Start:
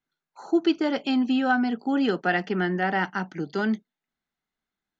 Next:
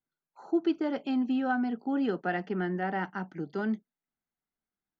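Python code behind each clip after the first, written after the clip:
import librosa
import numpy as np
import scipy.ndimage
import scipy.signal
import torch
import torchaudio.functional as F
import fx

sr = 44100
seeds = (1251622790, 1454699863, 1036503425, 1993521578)

y = fx.high_shelf(x, sr, hz=2300.0, db=-12.0)
y = y * librosa.db_to_amplitude(-5.0)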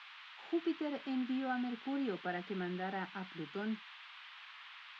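y = fx.dmg_noise_band(x, sr, seeds[0], low_hz=950.0, high_hz=3500.0, level_db=-45.0)
y = y * librosa.db_to_amplitude(-8.5)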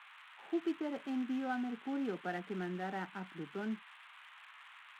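y = fx.wiener(x, sr, points=9)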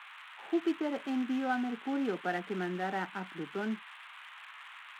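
y = fx.low_shelf(x, sr, hz=130.0, db=-11.5)
y = y * librosa.db_to_amplitude(6.5)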